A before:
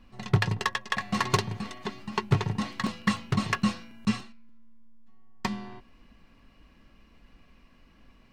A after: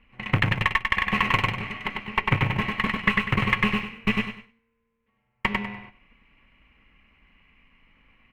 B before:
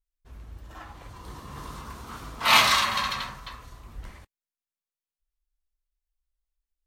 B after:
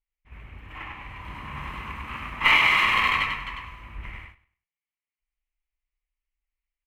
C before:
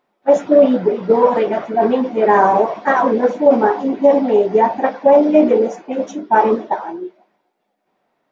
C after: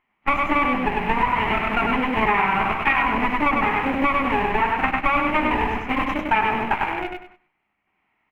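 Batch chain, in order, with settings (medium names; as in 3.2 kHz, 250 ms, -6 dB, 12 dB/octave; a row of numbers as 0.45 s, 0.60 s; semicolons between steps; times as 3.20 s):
comb filter that takes the minimum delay 0.97 ms; in parallel at -11 dB: bit crusher 4-bit; on the sum: peaking EQ 2.5 kHz +13 dB 0.71 oct; on a send: feedback delay 98 ms, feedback 27%, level -3.5 dB; on the sum: gate -47 dBFS, range -6 dB; compression 6:1, threshold -18 dBFS; resonant high shelf 3.3 kHz -12.5 dB, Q 1.5; band-stop 700 Hz, Q 22; peak normalisation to -6 dBFS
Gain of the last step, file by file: +1.0 dB, +1.5 dB, -0.5 dB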